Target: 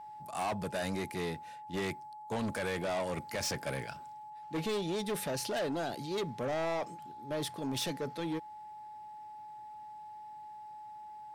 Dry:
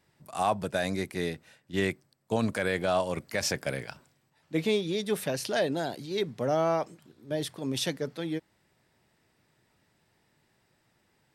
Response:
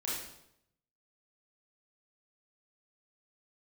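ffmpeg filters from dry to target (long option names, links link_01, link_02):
-af "asoftclip=type=tanh:threshold=-30.5dB,aeval=exprs='val(0)+0.00562*sin(2*PI*850*n/s)':channel_layout=same"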